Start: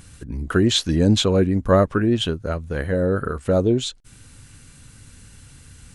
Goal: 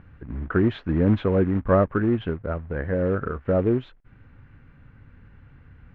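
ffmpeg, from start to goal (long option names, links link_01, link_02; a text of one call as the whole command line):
ffmpeg -i in.wav -af "acrusher=bits=4:mode=log:mix=0:aa=0.000001,lowpass=frequency=2000:width=0.5412,lowpass=frequency=2000:width=1.3066,volume=-3dB" out.wav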